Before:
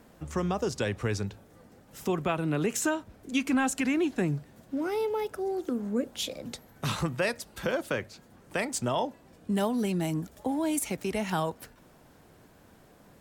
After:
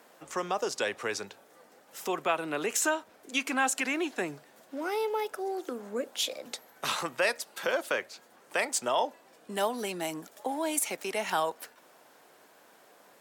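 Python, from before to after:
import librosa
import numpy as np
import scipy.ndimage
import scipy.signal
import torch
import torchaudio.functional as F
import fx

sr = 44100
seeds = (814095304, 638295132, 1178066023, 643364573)

y = scipy.signal.sosfilt(scipy.signal.butter(2, 520.0, 'highpass', fs=sr, output='sos'), x)
y = y * librosa.db_to_amplitude(3.0)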